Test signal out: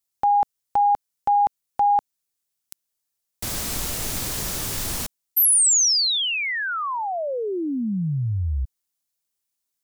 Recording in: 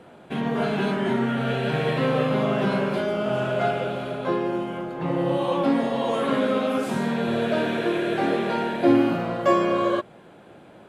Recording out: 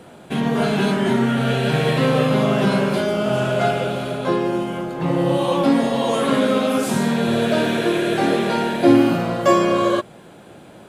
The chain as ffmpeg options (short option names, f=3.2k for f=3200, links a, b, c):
-af "bass=f=250:g=3,treble=f=4k:g=10,volume=4dB"